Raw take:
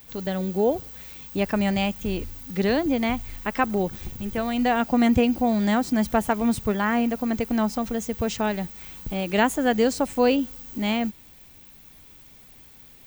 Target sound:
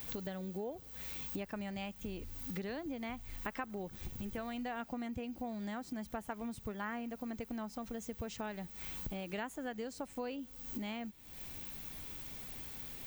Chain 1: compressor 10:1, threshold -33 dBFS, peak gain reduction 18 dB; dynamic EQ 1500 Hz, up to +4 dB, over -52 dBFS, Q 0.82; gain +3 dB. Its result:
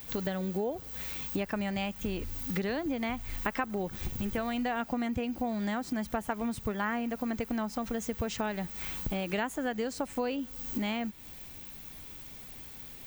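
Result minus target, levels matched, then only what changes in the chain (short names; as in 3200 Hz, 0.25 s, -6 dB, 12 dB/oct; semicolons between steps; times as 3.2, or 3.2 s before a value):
compressor: peak gain reduction -8.5 dB
change: compressor 10:1, threshold -42.5 dBFS, peak gain reduction 26.5 dB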